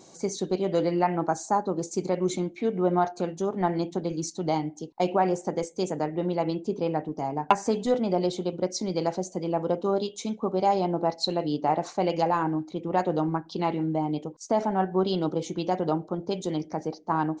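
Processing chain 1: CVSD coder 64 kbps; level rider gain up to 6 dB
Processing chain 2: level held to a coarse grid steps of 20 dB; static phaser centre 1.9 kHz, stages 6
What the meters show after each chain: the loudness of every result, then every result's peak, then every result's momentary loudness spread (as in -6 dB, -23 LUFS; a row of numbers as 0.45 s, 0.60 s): -22.0 LUFS, -42.5 LUFS; -2.5 dBFS, -11.0 dBFS; 6 LU, 11 LU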